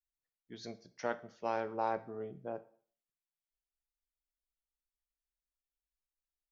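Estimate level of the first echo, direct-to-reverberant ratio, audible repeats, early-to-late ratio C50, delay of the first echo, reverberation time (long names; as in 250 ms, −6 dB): no echo audible, 11.0 dB, no echo audible, 17.0 dB, no echo audible, 0.50 s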